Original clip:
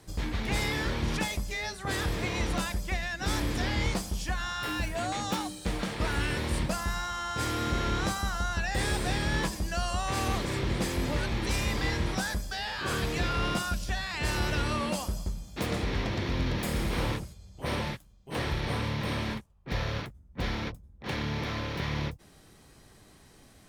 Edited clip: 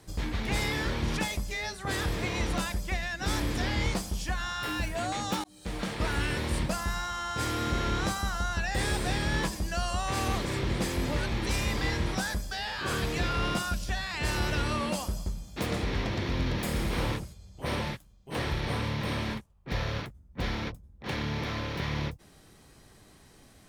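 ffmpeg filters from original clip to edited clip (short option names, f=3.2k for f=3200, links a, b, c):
-filter_complex "[0:a]asplit=2[a][b];[a]atrim=end=5.44,asetpts=PTS-STARTPTS,afade=t=out:st=5.436:d=0.004:c=hsin[c];[b]atrim=start=5.44,asetpts=PTS-STARTPTS,afade=t=in:d=0.43[d];[c][d]concat=n=2:v=0:a=1"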